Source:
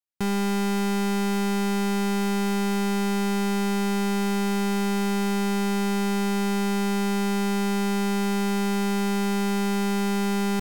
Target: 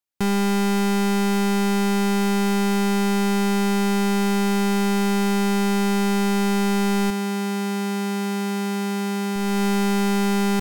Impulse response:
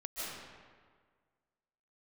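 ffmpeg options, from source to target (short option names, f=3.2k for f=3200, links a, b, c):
-filter_complex "[0:a]asettb=1/sr,asplit=3[a][b][c];[a]atrim=end=7.104[d];[b]atrim=start=7.1:end=9.36,asetpts=PTS-STARTPTS,afade=t=in:d=0.004:c=qsin,afade=t=out:st=2.256:d=0.004:c=qsin,highpass=55[e];[c]atrim=start=9.356[f];[d][e]acrossfade=d=0.004:c1=hsin:c2=qsin[g];[g][f]acrossfade=d=0.004:c1=qsin:c2=hsin,alimiter=limit=-23dB:level=0:latency=1:release=287,volume=4dB"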